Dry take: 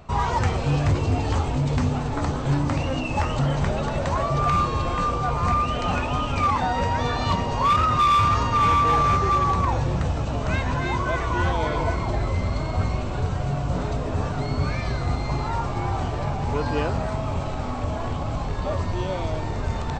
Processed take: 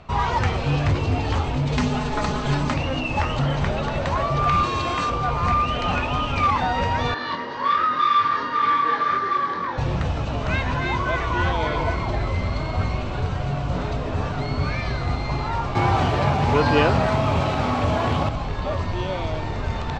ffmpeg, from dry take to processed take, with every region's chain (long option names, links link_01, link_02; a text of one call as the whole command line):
ffmpeg -i in.wav -filter_complex "[0:a]asettb=1/sr,asplit=3[link_01][link_02][link_03];[link_01]atrim=end=1.724[link_04];[link_02]atrim=start=1.72:end=2.74,asetpts=PTS-STARTPTS,afade=type=in:duration=0.004:curve=qsin,afade=type=out:start_time=1.016:duration=0.004:curve=qsin,highshelf=frequency=4200:gain=7.5,aecho=1:1:4.8:0.66,atrim=end_sample=44982[link_05];[link_03]atrim=start=2.736[link_06];[link_04][link_05]acrossfade=duration=0.004:curve1=hsin:curve2=qsin[link_07];[link_07][link_06]acrossfade=duration=0.004:curve1=qsin:curve2=hsin,asettb=1/sr,asplit=3[link_08][link_09][link_10];[link_08]atrim=end=4.634[link_11];[link_09]atrim=start=4.63:end=5.1,asetpts=PTS-STARTPTS,afade=type=in:duration=0.004:curve=qsin,afade=type=out:start_time=0.466:duration=0.004:curve=qsin,highpass=92,highshelf=frequency=5100:gain=11,aecho=1:1:2.9:0.35,atrim=end_sample=20727[link_12];[link_10]atrim=start=5.096[link_13];[link_11][link_12]acrossfade=duration=0.004:curve1=hsin:curve2=qsin[link_14];[link_14][link_13]acrossfade=duration=0.004:curve1=qsin:curve2=hsin,asettb=1/sr,asplit=3[link_15][link_16][link_17];[link_15]atrim=end=7.144[link_18];[link_16]atrim=start=7.14:end=9.78,asetpts=PTS-STARTPTS,afade=type=in:duration=0.004:curve=qsin,afade=type=out:start_time=2.636:duration=0.004:curve=qsin,flanger=delay=19.5:depth=4.7:speed=1.9,highpass=300,equalizer=frequency=300:width_type=q:width=4:gain=4,equalizer=frequency=730:width_type=q:width=4:gain=-10,equalizer=frequency=1700:width_type=q:width=4:gain=9,equalizer=frequency=2600:width_type=q:width=4:gain=-10,lowpass=frequency=5000:width=0.5412,lowpass=frequency=5000:width=1.3066[link_19];[link_17]atrim=start=9.776[link_20];[link_18][link_19]acrossfade=duration=0.004:curve1=hsin:curve2=qsin[link_21];[link_21][link_20]acrossfade=duration=0.004:curve1=qsin:curve2=hsin,asettb=1/sr,asplit=3[link_22][link_23][link_24];[link_22]atrim=end=15.754[link_25];[link_23]atrim=start=15.75:end=18.29,asetpts=PTS-STARTPTS,afade=type=in:duration=0.004:curve=qsin,afade=type=out:start_time=2.536:duration=0.004:curve=qsin,highpass=80,acrusher=bits=9:dc=4:mix=0:aa=0.000001,acontrast=76[link_26];[link_24]atrim=start=18.286[link_27];[link_25][link_26]acrossfade=duration=0.004:curve1=hsin:curve2=qsin[link_28];[link_28][link_27]acrossfade=duration=0.004:curve1=qsin:curve2=hsin,lowpass=3300,highshelf=frequency=2500:gain=11" out.wav